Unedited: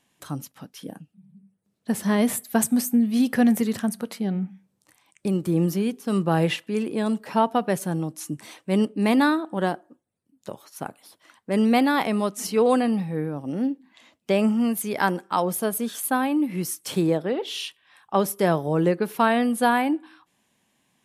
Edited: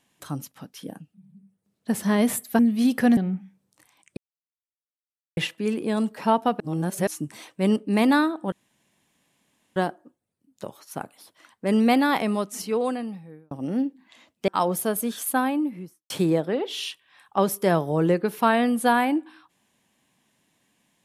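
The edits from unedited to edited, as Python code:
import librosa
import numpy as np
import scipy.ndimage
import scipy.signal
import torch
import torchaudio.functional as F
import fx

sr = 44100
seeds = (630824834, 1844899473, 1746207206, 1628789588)

y = fx.studio_fade_out(x, sr, start_s=16.14, length_s=0.73)
y = fx.edit(y, sr, fx.cut(start_s=2.59, length_s=0.35),
    fx.cut(start_s=3.52, length_s=0.74),
    fx.silence(start_s=5.26, length_s=1.2),
    fx.reverse_span(start_s=7.69, length_s=0.47),
    fx.insert_room_tone(at_s=9.61, length_s=1.24),
    fx.fade_out_span(start_s=12.02, length_s=1.34),
    fx.cut(start_s=14.33, length_s=0.92), tone=tone)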